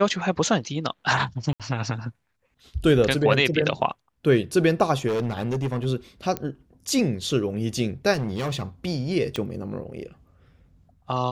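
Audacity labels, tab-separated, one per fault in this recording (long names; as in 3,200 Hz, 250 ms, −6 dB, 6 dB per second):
1.530000	1.600000	drop-out 67 ms
5.070000	5.860000	clipping −21.5 dBFS
6.370000	6.370000	click −13 dBFS
8.130000	8.630000	clipping −23.5 dBFS
9.360000	9.360000	click −15 dBFS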